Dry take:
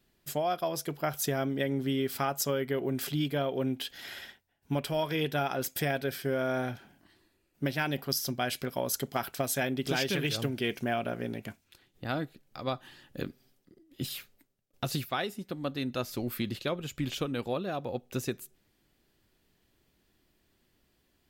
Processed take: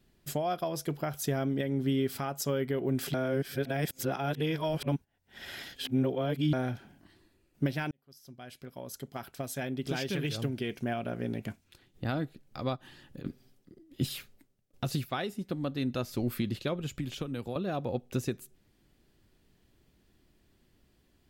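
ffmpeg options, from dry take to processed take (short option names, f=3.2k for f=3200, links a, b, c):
-filter_complex "[0:a]asplit=3[a][b][c];[a]afade=t=out:st=12.75:d=0.02[d];[b]acompressor=threshold=-44dB:ratio=12:attack=3.2:release=140:knee=1:detection=peak,afade=t=in:st=12.75:d=0.02,afade=t=out:st=13.24:d=0.02[e];[c]afade=t=in:st=13.24:d=0.02[f];[d][e][f]amix=inputs=3:normalize=0,asettb=1/sr,asplit=3[g][h][i];[g]atrim=end=16.994[j];[h]atrim=start=16.99:end=17.56,asetpts=PTS-STARTPTS,afade=t=in:d=0.004:c=qsin,afade=t=out:st=0.566:d=0.004:c=qsin,acrossover=split=98|7600[k][l][m];[k]acompressor=threshold=-54dB:ratio=4[n];[l]acompressor=threshold=-38dB:ratio=4[o];[m]acompressor=threshold=-56dB:ratio=4[p];[n][o][p]amix=inputs=3:normalize=0[q];[i]atrim=start=17.556[r];[j][q]acrossfade=d=0.004:c1=hsin:c2=qsin[s];[s][r]acrossfade=d=0.004:c1=qsin:c2=hsin,asplit=4[t][u][v][w];[t]atrim=end=3.142[x];[u]atrim=start=3.138:end=6.532,asetpts=PTS-STARTPTS,areverse[y];[v]atrim=start=6.528:end=7.91,asetpts=PTS-STARTPTS,afade=t=out:st=1.378:d=0.004:c=hsin[z];[w]atrim=start=7.91,asetpts=PTS-STARTPTS,afade=t=in:d=4.17[aa];[x][y]acrossfade=d=0.004:c1=hsin:c2=hsin[ab];[z][aa]concat=n=2:v=0:a=1[ac];[ab][ac]acrossfade=d=0.004:c1=hsin:c2=hsin,equalizer=f=14k:w=5.6:g=-9.5,alimiter=limit=-23dB:level=0:latency=1:release=491,lowshelf=f=360:g=7"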